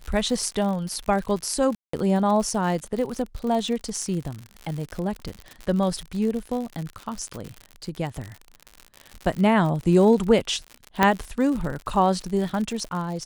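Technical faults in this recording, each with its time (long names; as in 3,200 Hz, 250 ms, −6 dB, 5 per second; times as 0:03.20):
surface crackle 77 per second −29 dBFS
0:01.75–0:01.93: drop-out 184 ms
0:11.03: click −4 dBFS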